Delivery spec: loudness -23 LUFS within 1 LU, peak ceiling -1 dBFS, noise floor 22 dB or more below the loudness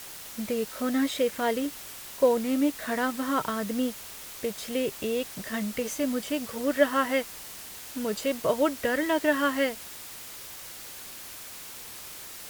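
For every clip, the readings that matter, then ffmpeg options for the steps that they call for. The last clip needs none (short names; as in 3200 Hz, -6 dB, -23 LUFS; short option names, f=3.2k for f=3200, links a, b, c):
noise floor -43 dBFS; noise floor target -51 dBFS; loudness -28.5 LUFS; peak -8.5 dBFS; loudness target -23.0 LUFS
-> -af "afftdn=nr=8:nf=-43"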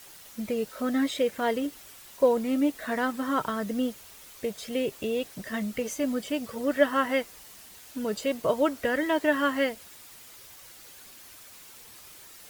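noise floor -49 dBFS; noise floor target -51 dBFS
-> -af "afftdn=nr=6:nf=-49"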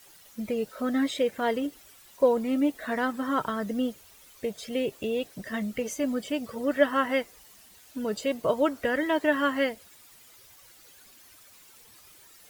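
noise floor -54 dBFS; loudness -28.5 LUFS; peak -8.5 dBFS; loudness target -23.0 LUFS
-> -af "volume=5.5dB"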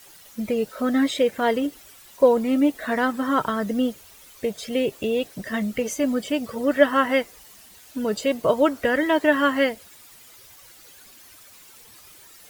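loudness -23.0 LUFS; peak -3.0 dBFS; noise floor -49 dBFS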